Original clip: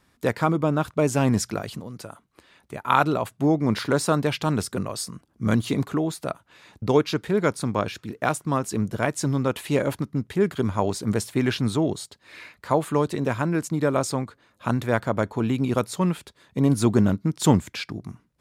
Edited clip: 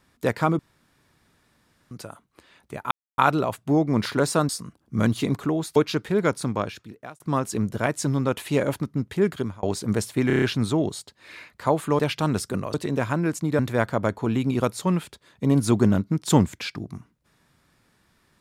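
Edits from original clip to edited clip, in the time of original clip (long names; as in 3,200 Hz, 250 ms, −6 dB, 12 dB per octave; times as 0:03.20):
0:00.59–0:01.91: fill with room tone
0:02.91: splice in silence 0.27 s
0:04.22–0:04.97: move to 0:13.03
0:06.24–0:06.95: remove
0:07.64–0:08.39: fade out
0:10.52–0:10.82: fade out linear
0:11.46: stutter 0.03 s, 6 plays
0:13.88–0:14.73: remove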